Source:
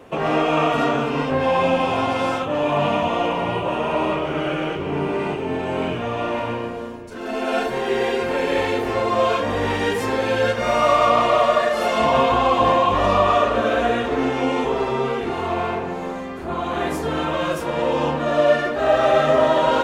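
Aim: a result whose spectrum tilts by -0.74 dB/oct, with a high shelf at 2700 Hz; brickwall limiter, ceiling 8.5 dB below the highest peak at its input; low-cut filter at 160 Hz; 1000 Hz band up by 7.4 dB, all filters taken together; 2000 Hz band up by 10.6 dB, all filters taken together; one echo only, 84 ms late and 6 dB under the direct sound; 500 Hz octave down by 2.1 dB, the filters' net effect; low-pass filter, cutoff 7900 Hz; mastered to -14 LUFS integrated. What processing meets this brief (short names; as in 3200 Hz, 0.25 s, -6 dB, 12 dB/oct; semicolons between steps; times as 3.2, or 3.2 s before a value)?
HPF 160 Hz; LPF 7900 Hz; bell 500 Hz -6.5 dB; bell 1000 Hz +7.5 dB; bell 2000 Hz +8.5 dB; high shelf 2700 Hz +7 dB; limiter -7 dBFS; echo 84 ms -6 dB; gain +2 dB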